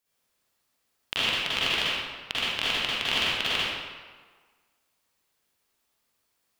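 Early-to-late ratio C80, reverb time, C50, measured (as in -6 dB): -2.5 dB, 1.5 s, -6.0 dB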